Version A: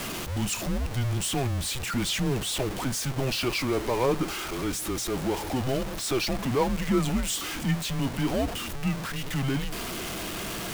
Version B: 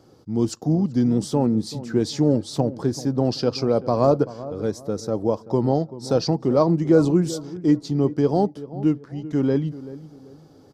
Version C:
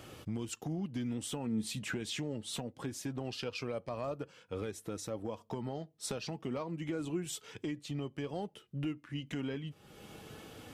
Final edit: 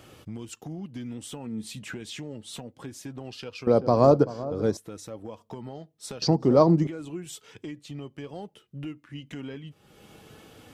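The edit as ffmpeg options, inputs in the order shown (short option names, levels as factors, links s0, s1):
-filter_complex "[1:a]asplit=2[s0][s1];[2:a]asplit=3[s2][s3][s4];[s2]atrim=end=3.672[s5];[s0]atrim=start=3.668:end=4.772[s6];[s3]atrim=start=4.768:end=6.222[s7];[s1]atrim=start=6.218:end=6.872[s8];[s4]atrim=start=6.868[s9];[s5][s6]acrossfade=d=0.004:c1=hsin:c2=hsin[s10];[s10][s7]acrossfade=d=0.004:c1=hsin:c2=hsin[s11];[s11][s8]acrossfade=d=0.004:c1=hsin:c2=hsin[s12];[s12][s9]acrossfade=d=0.004:c1=hsin:c2=hsin"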